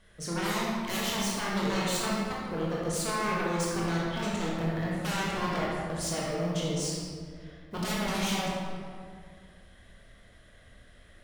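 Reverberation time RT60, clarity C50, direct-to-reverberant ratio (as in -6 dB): 2.1 s, -2.0 dB, -5.5 dB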